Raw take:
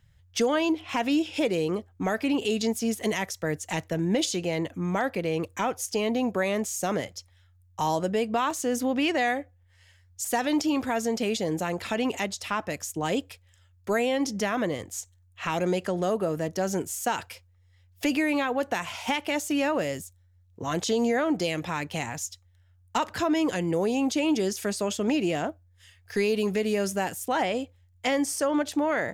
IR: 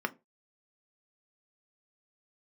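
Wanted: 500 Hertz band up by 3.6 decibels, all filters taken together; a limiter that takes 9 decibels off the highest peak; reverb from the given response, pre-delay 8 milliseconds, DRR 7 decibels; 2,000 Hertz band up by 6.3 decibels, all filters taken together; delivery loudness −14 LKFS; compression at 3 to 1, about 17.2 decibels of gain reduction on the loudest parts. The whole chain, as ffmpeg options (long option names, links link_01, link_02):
-filter_complex "[0:a]equalizer=frequency=500:width_type=o:gain=4,equalizer=frequency=2000:width_type=o:gain=7.5,acompressor=threshold=-42dB:ratio=3,alimiter=level_in=7dB:limit=-24dB:level=0:latency=1,volume=-7dB,asplit=2[link_01][link_02];[1:a]atrim=start_sample=2205,adelay=8[link_03];[link_02][link_03]afir=irnorm=-1:irlink=0,volume=-13.5dB[link_04];[link_01][link_04]amix=inputs=2:normalize=0,volume=27dB"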